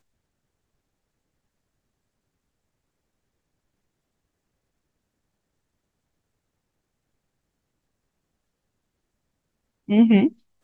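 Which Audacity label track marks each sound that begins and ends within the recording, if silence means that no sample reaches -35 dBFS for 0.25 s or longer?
9.890000	10.290000	sound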